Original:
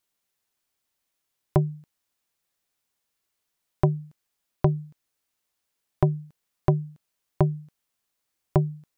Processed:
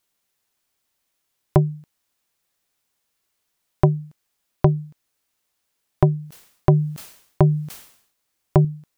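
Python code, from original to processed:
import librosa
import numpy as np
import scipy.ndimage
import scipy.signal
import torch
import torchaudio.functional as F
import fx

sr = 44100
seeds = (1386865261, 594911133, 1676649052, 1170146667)

y = fx.sustainer(x, sr, db_per_s=89.0, at=(6.17, 8.65))
y = y * librosa.db_to_amplitude(5.0)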